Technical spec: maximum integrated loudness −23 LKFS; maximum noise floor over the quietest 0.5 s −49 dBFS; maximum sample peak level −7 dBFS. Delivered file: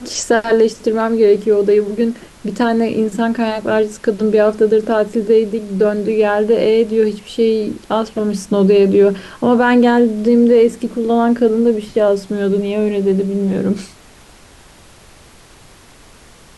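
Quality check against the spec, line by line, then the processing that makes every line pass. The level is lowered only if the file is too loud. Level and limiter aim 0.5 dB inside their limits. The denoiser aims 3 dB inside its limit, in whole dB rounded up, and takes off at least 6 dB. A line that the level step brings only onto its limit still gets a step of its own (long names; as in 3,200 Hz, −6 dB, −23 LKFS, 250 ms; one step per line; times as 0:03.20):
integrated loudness −15.0 LKFS: out of spec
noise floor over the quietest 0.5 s −43 dBFS: out of spec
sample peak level −3.0 dBFS: out of spec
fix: level −8.5 dB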